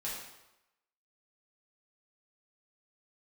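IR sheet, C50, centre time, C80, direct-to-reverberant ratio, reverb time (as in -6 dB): 1.5 dB, 59 ms, 4.5 dB, -7.0 dB, 0.95 s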